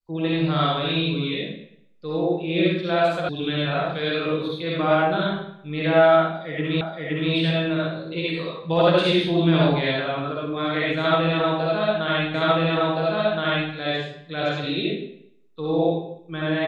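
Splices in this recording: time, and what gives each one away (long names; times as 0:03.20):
0:03.29: cut off before it has died away
0:06.81: the same again, the last 0.52 s
0:12.34: the same again, the last 1.37 s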